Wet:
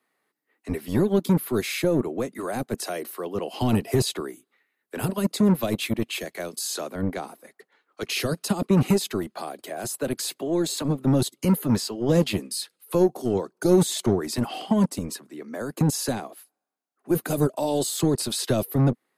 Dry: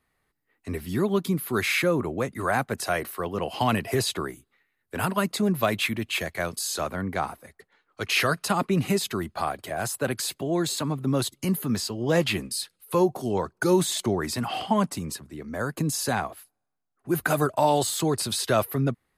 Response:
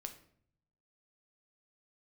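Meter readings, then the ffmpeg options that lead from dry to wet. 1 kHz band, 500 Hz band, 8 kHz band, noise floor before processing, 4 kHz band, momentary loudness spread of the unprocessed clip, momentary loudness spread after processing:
−6.0 dB, +1.0 dB, 0.0 dB, −76 dBFS, −1.5 dB, 9 LU, 12 LU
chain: -filter_complex "[0:a]lowshelf=frequency=400:gain=5.5,acrossover=split=230|580|3100[link_01][link_02][link_03][link_04];[link_01]acrusher=bits=3:mix=0:aa=0.5[link_05];[link_03]acompressor=threshold=-38dB:ratio=6[link_06];[link_05][link_02][link_06][link_04]amix=inputs=4:normalize=0"

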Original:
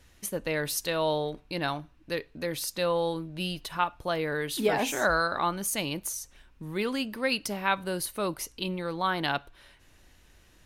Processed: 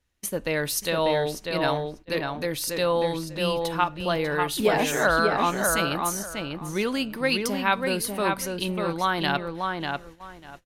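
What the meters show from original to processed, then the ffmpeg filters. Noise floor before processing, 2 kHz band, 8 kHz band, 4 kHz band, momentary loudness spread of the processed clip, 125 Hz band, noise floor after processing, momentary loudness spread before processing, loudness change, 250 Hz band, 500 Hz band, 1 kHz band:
−59 dBFS, +5.0 dB, +3.5 dB, +4.0 dB, 8 LU, +5.0 dB, −50 dBFS, 8 LU, +4.5 dB, +5.0 dB, +5.0 dB, +5.0 dB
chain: -filter_complex "[0:a]asplit=2[link_01][link_02];[link_02]adelay=594,lowpass=frequency=2900:poles=1,volume=-3.5dB,asplit=2[link_03][link_04];[link_04]adelay=594,lowpass=frequency=2900:poles=1,volume=0.21,asplit=2[link_05][link_06];[link_06]adelay=594,lowpass=frequency=2900:poles=1,volume=0.21[link_07];[link_03][link_05][link_07]amix=inputs=3:normalize=0[link_08];[link_01][link_08]amix=inputs=2:normalize=0,agate=range=-21dB:threshold=-47dB:ratio=16:detection=peak,volume=3.5dB"

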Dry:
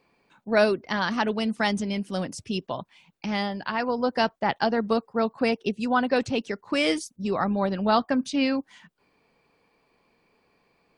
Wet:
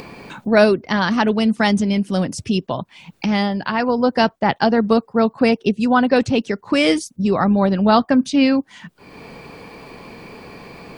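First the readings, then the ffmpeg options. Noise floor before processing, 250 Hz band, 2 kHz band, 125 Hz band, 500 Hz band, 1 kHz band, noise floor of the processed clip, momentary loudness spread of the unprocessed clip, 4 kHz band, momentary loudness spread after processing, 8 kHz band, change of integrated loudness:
−69 dBFS, +10.0 dB, +6.0 dB, +11.0 dB, +7.5 dB, +6.5 dB, −57 dBFS, 8 LU, +6.0 dB, 7 LU, +6.5 dB, +8.0 dB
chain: -af "acompressor=mode=upward:threshold=-28dB:ratio=2.5,equalizer=frequency=120:width_type=o:width=3:gain=5.5,volume=6dB"

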